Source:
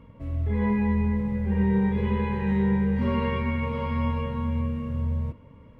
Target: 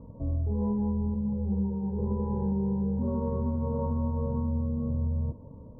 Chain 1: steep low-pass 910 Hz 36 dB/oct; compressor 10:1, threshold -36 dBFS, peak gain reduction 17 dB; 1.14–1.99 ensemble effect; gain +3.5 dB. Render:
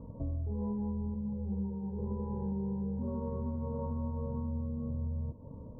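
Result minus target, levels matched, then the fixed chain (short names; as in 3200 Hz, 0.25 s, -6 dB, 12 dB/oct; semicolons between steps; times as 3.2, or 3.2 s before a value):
compressor: peak gain reduction +7 dB
steep low-pass 910 Hz 36 dB/oct; compressor 10:1, threshold -28.5 dBFS, peak gain reduction 10.5 dB; 1.14–1.99 ensemble effect; gain +3.5 dB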